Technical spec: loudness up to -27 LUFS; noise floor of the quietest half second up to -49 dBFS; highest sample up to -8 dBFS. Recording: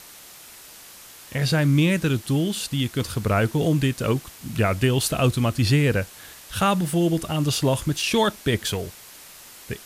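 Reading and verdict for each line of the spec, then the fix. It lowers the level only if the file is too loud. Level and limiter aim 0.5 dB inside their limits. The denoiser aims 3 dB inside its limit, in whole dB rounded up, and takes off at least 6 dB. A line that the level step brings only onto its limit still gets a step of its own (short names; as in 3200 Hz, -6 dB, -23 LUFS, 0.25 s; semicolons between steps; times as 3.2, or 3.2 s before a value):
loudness -22.5 LUFS: fail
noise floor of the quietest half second -45 dBFS: fail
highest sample -6.5 dBFS: fail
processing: gain -5 dB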